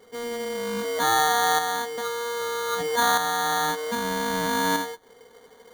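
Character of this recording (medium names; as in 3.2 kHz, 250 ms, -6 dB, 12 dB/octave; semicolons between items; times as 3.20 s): aliases and images of a low sample rate 2.6 kHz, jitter 0%; tremolo saw up 0.63 Hz, depth 50%; a quantiser's noise floor 10-bit, dither none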